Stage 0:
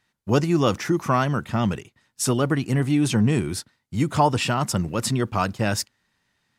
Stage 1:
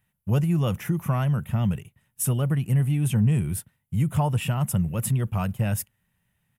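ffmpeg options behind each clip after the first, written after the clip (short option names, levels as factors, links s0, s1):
-filter_complex "[0:a]firequalizer=gain_entry='entry(170,0);entry(280,-16);entry(540,-10);entry(1200,-14);entry(2900,-9);entry(4400,-24);entry(11000,3)':delay=0.05:min_phase=1,asplit=2[s0][s1];[s1]acompressor=threshold=0.0282:ratio=6,volume=0.891[s2];[s0][s2]amix=inputs=2:normalize=0"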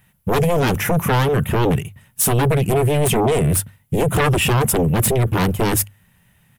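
-af "aeval=exprs='0.224*sin(PI/2*3.98*val(0)/0.224)':c=same,bandreject=f=50:t=h:w=6,bandreject=f=100:t=h:w=6"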